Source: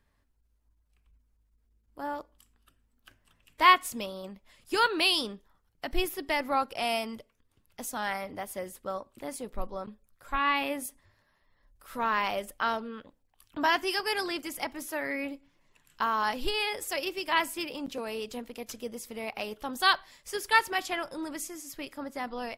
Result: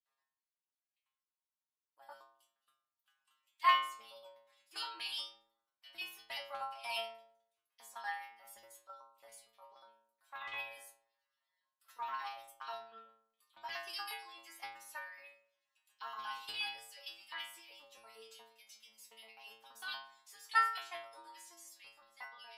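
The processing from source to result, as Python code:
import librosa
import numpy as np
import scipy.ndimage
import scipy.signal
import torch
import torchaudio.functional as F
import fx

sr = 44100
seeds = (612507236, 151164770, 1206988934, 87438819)

y = fx.filter_lfo_highpass(x, sr, shape='square', hz=8.4, low_hz=930.0, high_hz=3200.0, q=1.8)
y = fx.level_steps(y, sr, step_db=16)
y = fx.stiff_resonator(y, sr, f0_hz=110.0, decay_s=0.73, stiffness=0.002)
y = y * 10.0 ** (6.0 / 20.0)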